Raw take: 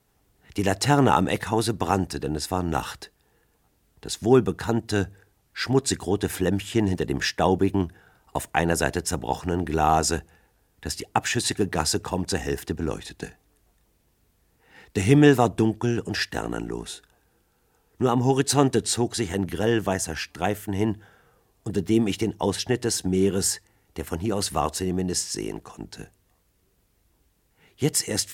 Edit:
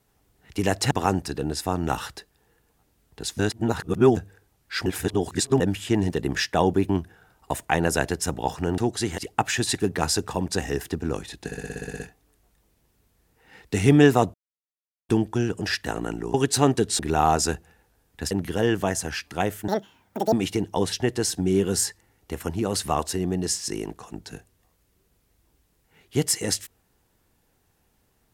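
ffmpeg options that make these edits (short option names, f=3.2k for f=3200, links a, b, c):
-filter_complex "[0:a]asplit=23[a][b][c][d][e][f][g][h][i][j][k][l][m][n][o][p][q][r][s][t][u][v][w];[a]atrim=end=0.912[x];[b]atrim=start=1.758:end=4.242[y];[c]atrim=start=4.238:end=5.022,asetpts=PTS-STARTPTS,areverse[z];[d]atrim=start=5.018:end=5.712[aa];[e]atrim=start=5.708:end=6.452,asetpts=PTS-STARTPTS,areverse[ab];[f]atrim=start=6.448:end=9.632[ac];[g]atrim=start=18.948:end=19.352[ad];[h]atrim=start=10.948:end=13.292[ae];[i]atrim=start=13.228:end=13.292[af];[j]atrim=start=13.228:end=13.292[ag];[k]atrim=start=13.228:end=13.292[ah];[l]atrim=start=13.228:end=13.292[ai];[m]atrim=start=13.228:end=13.292[aj];[n]atrim=start=13.228:end=13.292[ak];[o]atrim=start=13.228:end=13.292[al];[p]atrim=start=13.228:end=13.292[am];[q]atrim=start=13.228:end=15.57,asetpts=PTS-STARTPTS,afade=t=out:st=2.338:d=0.004:c=hsin,apad=pad_dur=0.75[an];[r]atrim=start=15.57:end=16.822,asetpts=PTS-STARTPTS,afade=t=in:d=0.004:c=hsin[ao];[s]atrim=start=18.298:end=18.952[ap];[t]atrim=start=9.628:end=10.952[aq];[u]atrim=start=19.348:end=20.724[ar];[v]atrim=start=20.72:end=21.99,asetpts=PTS-STARTPTS,asetrate=86877,aresample=44100[as];[w]atrim=start=21.986[at];[x][y]acrossfade=d=0.004:c1=hsin:c2=hsin[au];[au][z]acrossfade=d=0.004:c1=hsin:c2=hsin[av];[av][aa]acrossfade=d=0.004:c1=hsin:c2=hsin[aw];[aw][ab]acrossfade=d=0.004:c1=hsin:c2=hsin[ax];[ax][ac]acrossfade=d=0.004:c1=hsin:c2=hsin[ay];[ay][ad]acrossfade=d=0.004:c1=hsin:c2=hsin[az];[az][ae]acrossfade=d=0.004:c1=hsin:c2=hsin[ba];[ba][af]acrossfade=d=0.004:c1=hsin:c2=hsin[bb];[bb][ag]acrossfade=d=0.004:c1=hsin:c2=hsin[bc];[bc][ah]acrossfade=d=0.004:c1=hsin:c2=hsin[bd];[bd][ai]acrossfade=d=0.004:c1=hsin:c2=hsin[be];[be][aj]acrossfade=d=0.004:c1=hsin:c2=hsin[bf];[bf][ak]acrossfade=d=0.004:c1=hsin:c2=hsin[bg];[bg][al]acrossfade=d=0.004:c1=hsin:c2=hsin[bh];[bh][am]acrossfade=d=0.004:c1=hsin:c2=hsin[bi];[an][ao]concat=n=2:v=0:a=1[bj];[bi][bj]acrossfade=d=0.004:c1=hsin:c2=hsin[bk];[bk][ap]acrossfade=d=0.004:c1=hsin:c2=hsin[bl];[bl][aq]acrossfade=d=0.004:c1=hsin:c2=hsin[bm];[bm][ar]acrossfade=d=0.004:c1=hsin:c2=hsin[bn];[bn][as]acrossfade=d=0.004:c1=hsin:c2=hsin[bo];[bo][at]acrossfade=d=0.004:c1=hsin:c2=hsin"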